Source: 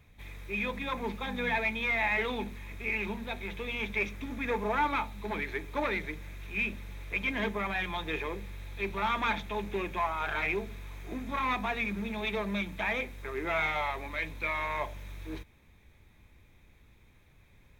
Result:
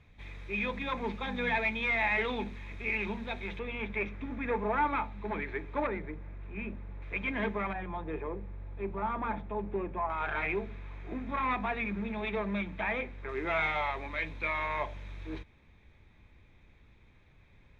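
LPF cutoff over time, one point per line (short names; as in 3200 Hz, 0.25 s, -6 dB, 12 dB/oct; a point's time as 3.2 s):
4700 Hz
from 3.59 s 2100 Hz
from 5.87 s 1200 Hz
from 7.02 s 2300 Hz
from 7.73 s 1000 Hz
from 10.1 s 2400 Hz
from 13.29 s 4100 Hz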